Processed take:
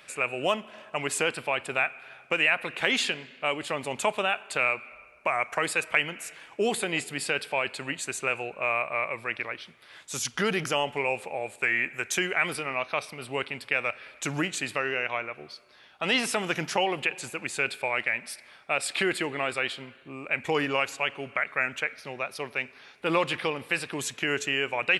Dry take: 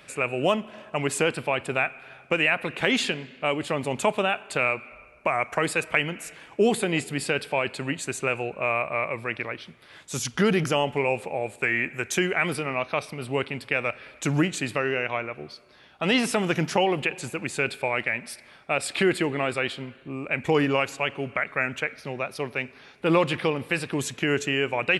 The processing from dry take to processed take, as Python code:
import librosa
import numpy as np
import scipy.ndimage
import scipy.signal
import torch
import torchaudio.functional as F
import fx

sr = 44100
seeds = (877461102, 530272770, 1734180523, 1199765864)

y = fx.low_shelf(x, sr, hz=450.0, db=-10.5)